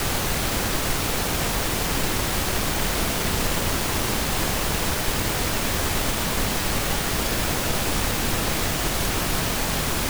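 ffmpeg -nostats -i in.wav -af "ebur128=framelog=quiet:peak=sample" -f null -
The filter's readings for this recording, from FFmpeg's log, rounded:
Integrated loudness:
  I:         -23.2 LUFS
  Threshold: -33.2 LUFS
Loudness range:
  LRA:         0.1 LU
  Threshold: -43.2 LUFS
  LRA low:   -23.3 LUFS
  LRA high:  -23.2 LUFS
Sample peak:
  Peak:       -9.3 dBFS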